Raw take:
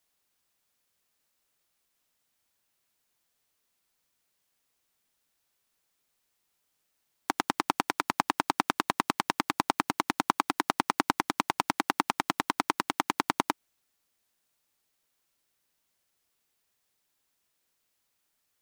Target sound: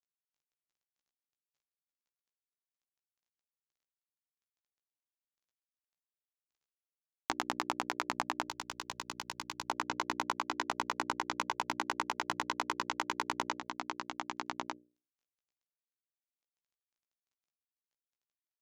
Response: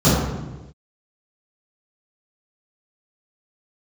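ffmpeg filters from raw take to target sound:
-filter_complex "[0:a]acrusher=bits=10:mix=0:aa=0.000001,aresample=16000,aresample=44100,asplit=2[link_01][link_02];[link_02]aecho=0:1:1198:0.282[link_03];[link_01][link_03]amix=inputs=2:normalize=0,asoftclip=type=hard:threshold=-7.5dB,bandreject=frequency=60:width_type=h:width=6,bandreject=frequency=120:width_type=h:width=6,bandreject=frequency=180:width_type=h:width=6,bandreject=frequency=240:width_type=h:width=6,bandreject=frequency=300:width_type=h:width=6,bandreject=frequency=360:width_type=h:width=6,bandreject=frequency=420:width_type=h:width=6,bandreject=frequency=480:width_type=h:width=6,bandreject=frequency=540:width_type=h:width=6,bandreject=frequency=600:width_type=h:width=6,acompressor=threshold=-30dB:ratio=6,asplit=2[link_04][link_05];[link_05]adelay=16,volume=-5.5dB[link_06];[link_04][link_06]amix=inputs=2:normalize=0,asettb=1/sr,asplit=3[link_07][link_08][link_09];[link_07]atrim=end=8.484[link_10];[link_08]atrim=start=8.48:end=9.7,asetpts=PTS-STARTPTS,afade=type=in:duration=0.004:curve=qsin,afade=type=out:start_time=1.216:duration=0.004:curve=qsin,acrossover=split=140|3000[link_11][link_12][link_13];[link_12]acompressor=threshold=-56dB:ratio=1.5[link_14];[link_11][link_14][link_13]amix=inputs=3:normalize=0[link_15];[link_09]atrim=start=9.696[link_16];[link_10][link_15]acrossfade=duration=0.004:curve1=hsin:curve2=qsin[link_17];[link_17][link_16]acrossfade=duration=0.004:curve1=qsin:curve2=hsin"

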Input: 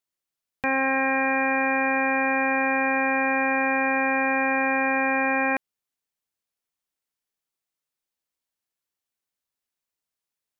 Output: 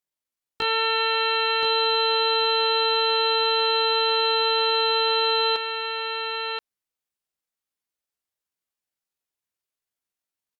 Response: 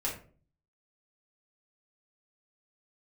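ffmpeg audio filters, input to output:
-filter_complex "[0:a]asetrate=74167,aresample=44100,atempo=0.594604,asplit=2[link_01][link_02];[link_02]aecho=0:1:1027:0.501[link_03];[link_01][link_03]amix=inputs=2:normalize=0"

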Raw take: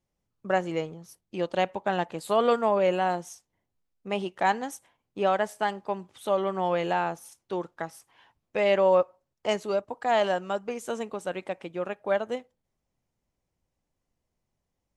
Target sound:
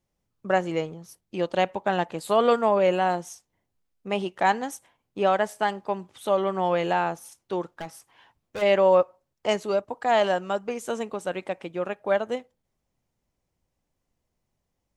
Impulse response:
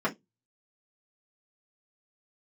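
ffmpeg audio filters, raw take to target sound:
-filter_complex "[0:a]asplit=3[link_01][link_02][link_03];[link_01]afade=type=out:start_time=7.64:duration=0.02[link_04];[link_02]asoftclip=type=hard:threshold=-32.5dB,afade=type=in:start_time=7.64:duration=0.02,afade=type=out:start_time=8.61:duration=0.02[link_05];[link_03]afade=type=in:start_time=8.61:duration=0.02[link_06];[link_04][link_05][link_06]amix=inputs=3:normalize=0,volume=2.5dB"

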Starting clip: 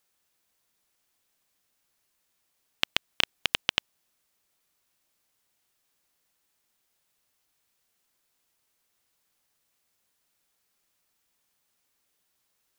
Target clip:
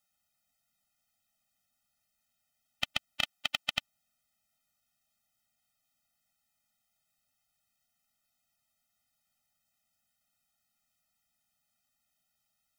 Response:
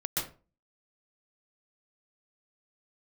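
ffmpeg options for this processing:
-filter_complex "[0:a]asettb=1/sr,asplit=3[link_01][link_02][link_03];[link_01]atrim=end=3.214[link_04];[link_02]atrim=start=3.21:end=3.75,asetpts=PTS-STARTPTS,afade=type=in:duration=0.004:curve=qsin,afade=type=out:start_time=0.536:duration=0.004:curve=qsin,lowshelf=frequency=150:gain=-10.5[link_05];[link_03]atrim=start=3.746[link_06];[link_04][link_05]acrossfade=duration=0.004:curve1=hsin:curve2=qsin[link_07];[link_07][link_06]acrossfade=duration=0.004:curve1=qsin:curve2=hsin,afftfilt=real='re*eq(mod(floor(b*sr/1024/300),2),0)':imag='im*eq(mod(floor(b*sr/1024/300),2),0)':win_size=1024:overlap=0.75,volume=-2dB"

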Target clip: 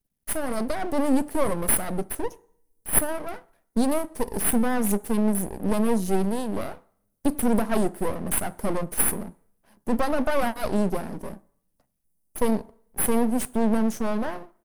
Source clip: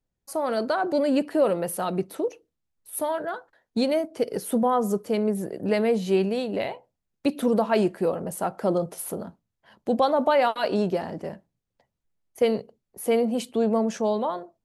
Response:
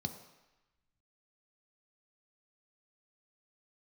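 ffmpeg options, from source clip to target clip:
-filter_complex "[0:a]firequalizer=gain_entry='entry(530,0);entry(2300,-13);entry(8900,14)':delay=0.05:min_phase=1,aeval=exprs='max(val(0),0)':channel_layout=same,asplit=2[link_01][link_02];[1:a]atrim=start_sample=2205,asetrate=70560,aresample=44100,highshelf=frequency=5700:gain=7[link_03];[link_02][link_03]afir=irnorm=-1:irlink=0,volume=-11.5dB[link_04];[link_01][link_04]amix=inputs=2:normalize=0,volume=3.5dB"

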